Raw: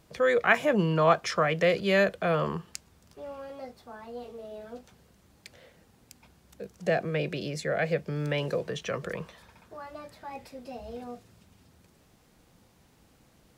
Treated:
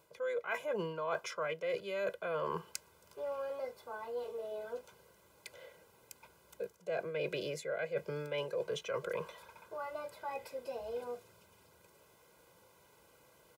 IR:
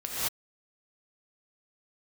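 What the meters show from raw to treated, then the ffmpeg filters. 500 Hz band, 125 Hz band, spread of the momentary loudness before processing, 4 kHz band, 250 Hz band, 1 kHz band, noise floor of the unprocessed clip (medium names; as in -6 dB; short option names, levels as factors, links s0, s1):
-8.5 dB, -17.0 dB, 21 LU, -9.5 dB, -16.5 dB, -10.5 dB, -62 dBFS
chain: -af "highpass=f=720:p=1,equalizer=f=4700:w=0.47:g=-8.5,aecho=1:1:2:0.62,areverse,acompressor=threshold=0.0141:ratio=16,areverse,asuperstop=centerf=1800:order=20:qfactor=6.9,volume=1.58"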